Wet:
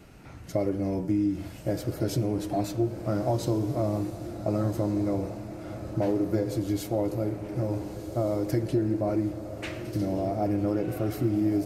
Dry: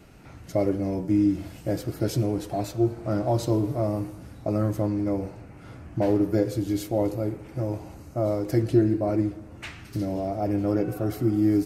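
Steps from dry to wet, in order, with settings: compressor 3:1, threshold -23 dBFS, peak gain reduction 7.5 dB; diffused feedback echo 1.412 s, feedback 53%, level -10.5 dB

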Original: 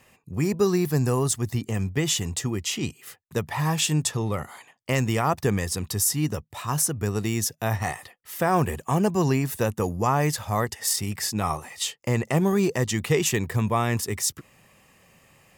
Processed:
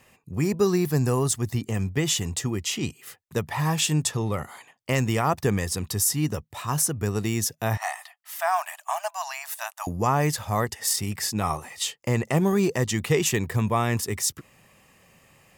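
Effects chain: 7.77–9.87 brick-wall FIR high-pass 590 Hz

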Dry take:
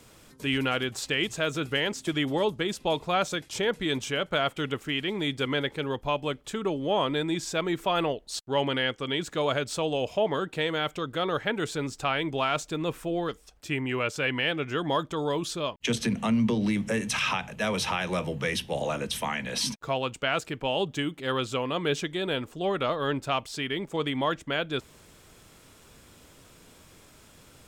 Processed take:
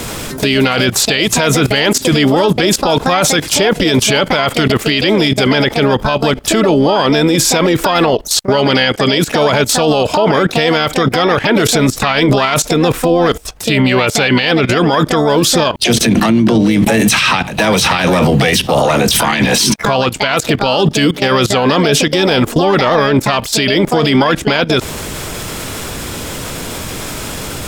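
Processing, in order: harmoniser +7 st -7 dB; level quantiser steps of 19 dB; maximiser +35.5 dB; gain -2 dB

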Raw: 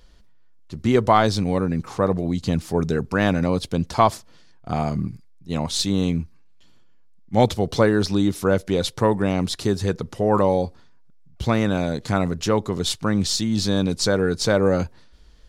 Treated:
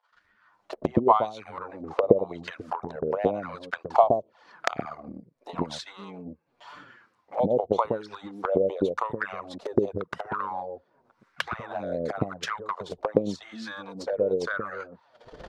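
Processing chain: recorder AGC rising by 47 dB/s; transient shaper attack +12 dB, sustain -9 dB; wah 0.9 Hz 520–1600 Hz, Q 2.9; bands offset in time highs, lows 0.12 s, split 570 Hz; envelope flanger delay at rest 10.4 ms, full sweep at -22 dBFS; gain +1 dB

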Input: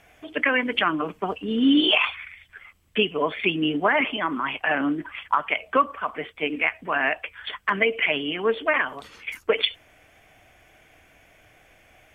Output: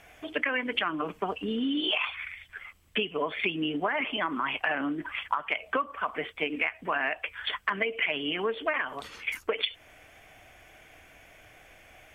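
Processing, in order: low shelf 110 Hz +7 dB; compressor 5:1, threshold -27 dBFS, peak gain reduction 12 dB; low shelf 260 Hz -7 dB; gain +2 dB

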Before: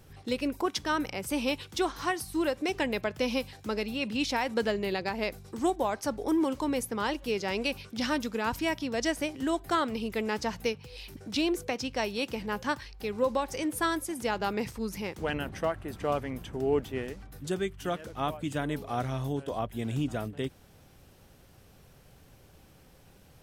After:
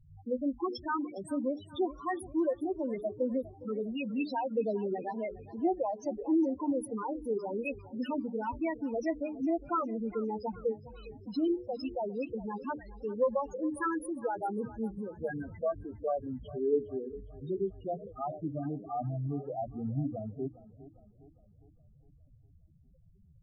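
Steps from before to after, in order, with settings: notches 60/120/180/240/300/360/420 Hz; loudest bins only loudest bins 4; warbling echo 0.408 s, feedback 49%, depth 60 cents, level -18 dB

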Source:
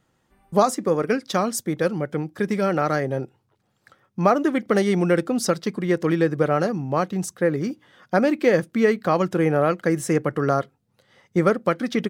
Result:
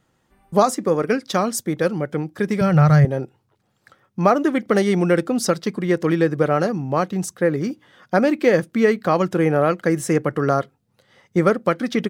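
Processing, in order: 2.61–3.05 resonant low shelf 190 Hz +12.5 dB, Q 3; gain +2 dB

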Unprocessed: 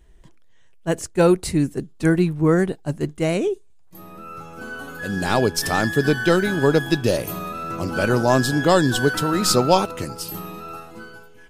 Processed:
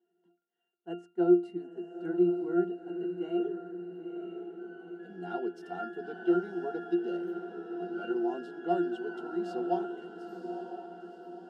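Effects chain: Chebyshev high-pass 250 Hz, order 4; octave resonator F, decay 0.29 s; diffused feedback echo 0.952 s, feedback 50%, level -8 dB; gain +3 dB

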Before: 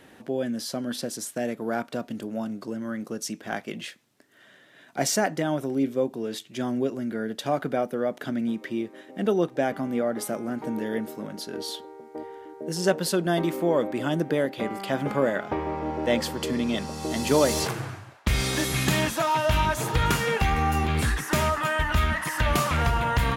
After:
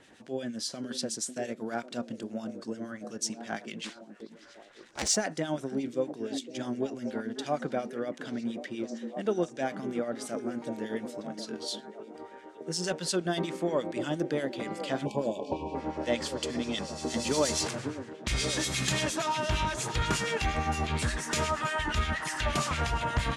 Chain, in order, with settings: 3.84–5.09 cycle switcher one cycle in 2, inverted; LPF 8500 Hz 24 dB/oct; high shelf 3200 Hz +9 dB; delay with a stepping band-pass 0.546 s, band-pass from 270 Hz, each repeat 0.7 oct, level -6 dB; 15.05–15.75 spectral delete 1100–2300 Hz; soft clip -9 dBFS, distortion -27 dB; harmonic tremolo 8.5 Hz, depth 70%, crossover 1800 Hz; ending taper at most 500 dB/s; gain -3.5 dB

